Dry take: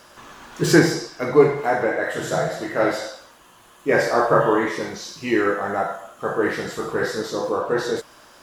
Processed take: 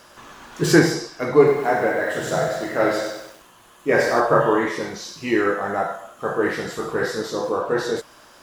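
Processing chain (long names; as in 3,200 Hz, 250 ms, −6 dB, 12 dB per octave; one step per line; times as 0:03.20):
0:01.37–0:04.20: feedback echo at a low word length 98 ms, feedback 55%, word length 7 bits, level −8.5 dB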